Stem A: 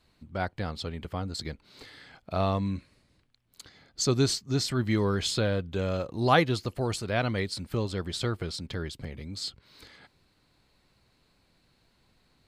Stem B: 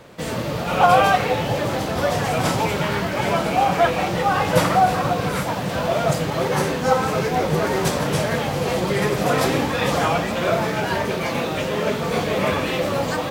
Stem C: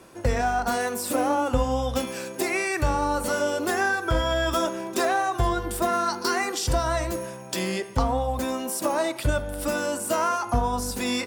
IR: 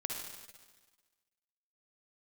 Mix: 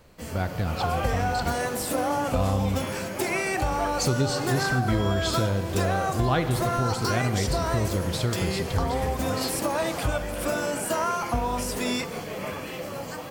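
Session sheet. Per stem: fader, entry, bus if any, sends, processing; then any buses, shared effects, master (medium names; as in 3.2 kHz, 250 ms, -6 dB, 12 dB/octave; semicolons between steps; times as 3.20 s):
-1.5 dB, 0.00 s, send -6.5 dB, bass shelf 160 Hz +11 dB
-12.5 dB, 0.00 s, no send, treble shelf 7.3 kHz +9.5 dB; band-stop 3.7 kHz, Q 6.6
-2.0 dB, 0.80 s, send -16 dB, none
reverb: on, RT60 1.4 s, pre-delay 49 ms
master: compression 2.5:1, threshold -22 dBFS, peak gain reduction 7 dB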